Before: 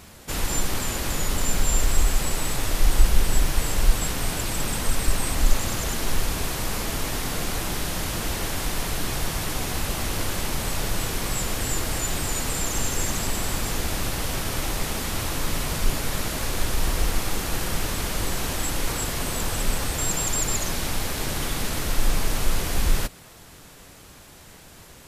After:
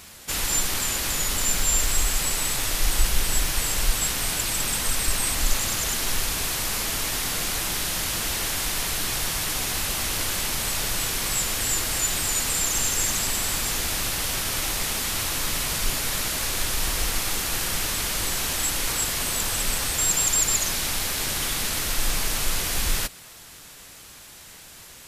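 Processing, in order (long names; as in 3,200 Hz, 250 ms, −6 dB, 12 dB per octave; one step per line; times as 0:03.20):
tilt shelving filter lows −5.5 dB, about 1,200 Hz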